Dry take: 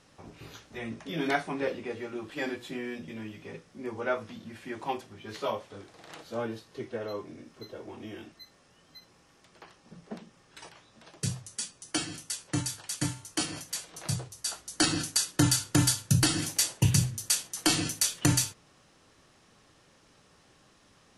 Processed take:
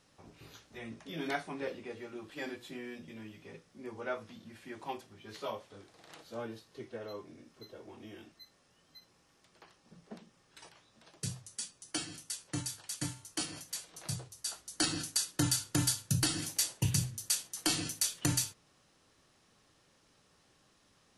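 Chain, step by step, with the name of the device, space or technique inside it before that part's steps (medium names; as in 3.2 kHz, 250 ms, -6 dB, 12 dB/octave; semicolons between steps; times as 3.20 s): presence and air boost (peaking EQ 4.2 kHz +2 dB; treble shelf 10 kHz +6.5 dB); trim -7.5 dB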